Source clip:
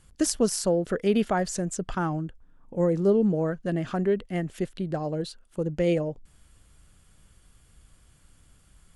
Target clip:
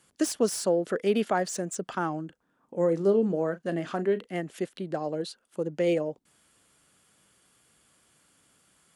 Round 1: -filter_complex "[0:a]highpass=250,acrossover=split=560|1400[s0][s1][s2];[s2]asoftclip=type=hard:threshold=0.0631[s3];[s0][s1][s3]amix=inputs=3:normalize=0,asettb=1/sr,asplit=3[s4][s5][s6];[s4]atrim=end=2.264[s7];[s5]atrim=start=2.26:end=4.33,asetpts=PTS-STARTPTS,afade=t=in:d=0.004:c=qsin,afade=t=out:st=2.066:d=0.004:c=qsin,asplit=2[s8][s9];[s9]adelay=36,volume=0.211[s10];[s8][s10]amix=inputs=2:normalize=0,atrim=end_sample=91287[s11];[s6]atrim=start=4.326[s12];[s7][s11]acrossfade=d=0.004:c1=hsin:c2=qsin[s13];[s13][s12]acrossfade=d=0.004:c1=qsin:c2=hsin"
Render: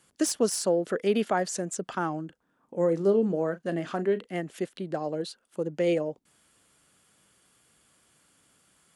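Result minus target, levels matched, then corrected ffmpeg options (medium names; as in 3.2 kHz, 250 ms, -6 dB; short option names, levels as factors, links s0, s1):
hard clipper: distortion -5 dB
-filter_complex "[0:a]highpass=250,acrossover=split=560|1400[s0][s1][s2];[s2]asoftclip=type=hard:threshold=0.0316[s3];[s0][s1][s3]amix=inputs=3:normalize=0,asettb=1/sr,asplit=3[s4][s5][s6];[s4]atrim=end=2.264[s7];[s5]atrim=start=2.26:end=4.33,asetpts=PTS-STARTPTS,afade=t=in:d=0.004:c=qsin,afade=t=out:st=2.066:d=0.004:c=qsin,asplit=2[s8][s9];[s9]adelay=36,volume=0.211[s10];[s8][s10]amix=inputs=2:normalize=0,atrim=end_sample=91287[s11];[s6]atrim=start=4.326[s12];[s7][s11]acrossfade=d=0.004:c1=hsin:c2=qsin[s13];[s13][s12]acrossfade=d=0.004:c1=qsin:c2=hsin"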